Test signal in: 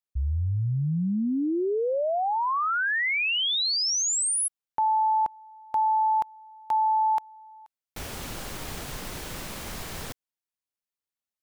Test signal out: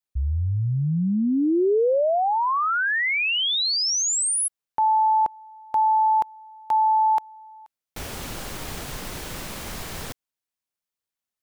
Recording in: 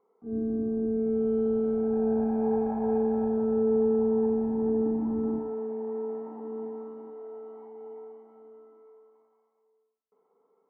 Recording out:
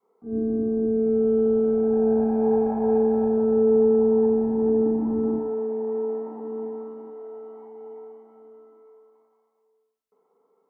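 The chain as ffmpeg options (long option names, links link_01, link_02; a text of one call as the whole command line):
ffmpeg -i in.wav -af "adynamicequalizer=threshold=0.0158:dfrequency=430:dqfactor=0.91:tfrequency=430:tqfactor=0.91:attack=5:release=100:ratio=0.375:range=2:mode=boostabove:tftype=bell,volume=2.5dB" out.wav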